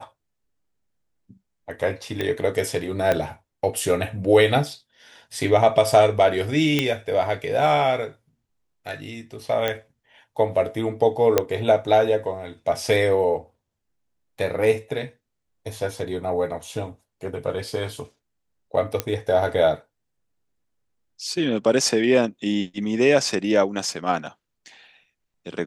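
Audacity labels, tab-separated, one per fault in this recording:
2.210000	2.210000	pop -13 dBFS
3.120000	3.120000	pop -8 dBFS
6.790000	6.790000	pop -6 dBFS
9.680000	9.680000	pop -10 dBFS
11.380000	11.380000	pop -3 dBFS
19.000000	19.000000	pop -7 dBFS

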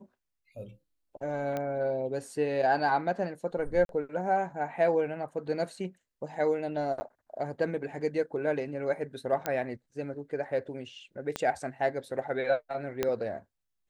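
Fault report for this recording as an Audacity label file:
1.570000	1.570000	pop -20 dBFS
3.850000	3.890000	gap 42 ms
7.000000	7.010000	gap 10 ms
9.460000	9.460000	pop -14 dBFS
11.360000	11.360000	pop -16 dBFS
13.030000	13.030000	pop -13 dBFS

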